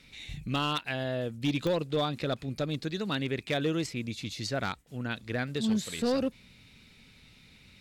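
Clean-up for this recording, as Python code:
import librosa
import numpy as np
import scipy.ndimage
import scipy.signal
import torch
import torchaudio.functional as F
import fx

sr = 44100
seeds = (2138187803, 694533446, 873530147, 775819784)

y = fx.fix_declip(x, sr, threshold_db=-22.0)
y = fx.fix_declick_ar(y, sr, threshold=10.0)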